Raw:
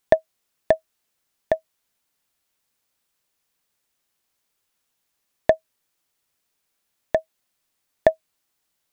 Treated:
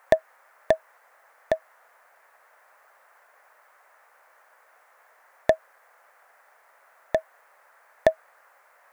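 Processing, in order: treble shelf 3 kHz +9 dB; band noise 530–1900 Hz -56 dBFS; trim -3 dB

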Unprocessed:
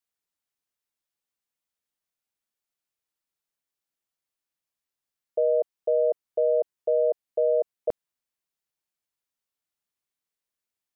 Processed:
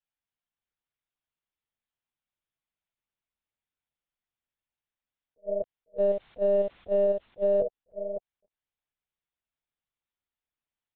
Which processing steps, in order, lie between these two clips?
5.98–7.05 s: jump at every zero crossing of -42.5 dBFS; delay 556 ms -4 dB; monotone LPC vocoder at 8 kHz 200 Hz; attacks held to a fixed rise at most 470 dB/s; trim -3 dB

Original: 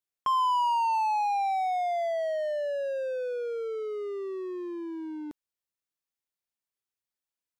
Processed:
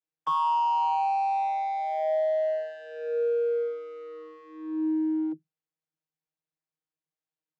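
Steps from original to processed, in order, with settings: vocoder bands 32, saw 157 Hz; trim +2.5 dB

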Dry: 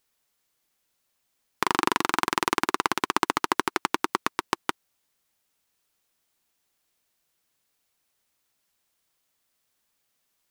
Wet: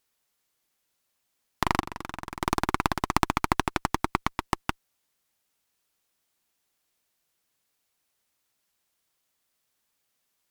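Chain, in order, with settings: Chebyshev shaper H 4 -9 dB, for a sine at -1 dBFS; 1.80–2.42 s: level held to a coarse grid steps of 18 dB; trim -1.5 dB

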